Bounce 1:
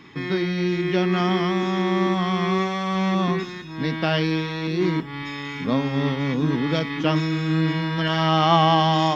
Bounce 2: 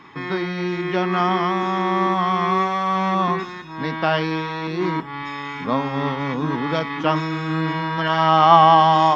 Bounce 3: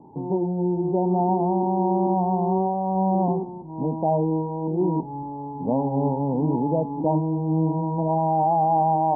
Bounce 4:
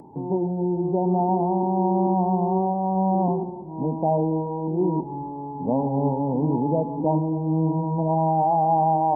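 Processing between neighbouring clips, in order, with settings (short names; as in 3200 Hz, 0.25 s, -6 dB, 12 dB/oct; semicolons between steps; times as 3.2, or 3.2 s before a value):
bell 1000 Hz +12 dB 1.6 oct; gain -3.5 dB
Chebyshev low-pass 930 Hz, order 8; limiter -15 dBFS, peak gain reduction 9.5 dB; gain +2 dB
upward compressor, threshold -42 dBFS; dark delay 0.143 s, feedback 57%, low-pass 890 Hz, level -15.5 dB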